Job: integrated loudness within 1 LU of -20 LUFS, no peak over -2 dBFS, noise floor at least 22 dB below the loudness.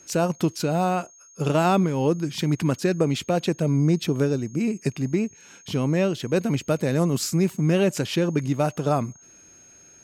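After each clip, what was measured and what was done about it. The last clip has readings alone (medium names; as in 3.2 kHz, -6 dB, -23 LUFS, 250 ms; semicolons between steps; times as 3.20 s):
steady tone 6.5 kHz; tone level -49 dBFS; loudness -24.0 LUFS; peak level -9.5 dBFS; loudness target -20.0 LUFS
-> band-stop 6.5 kHz, Q 30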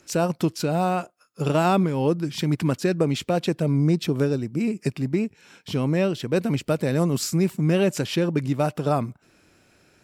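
steady tone not found; loudness -24.0 LUFS; peak level -9.5 dBFS; loudness target -20.0 LUFS
-> trim +4 dB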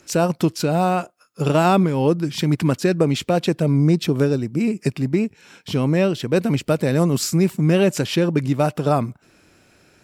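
loudness -20.0 LUFS; peak level -5.5 dBFS; noise floor -56 dBFS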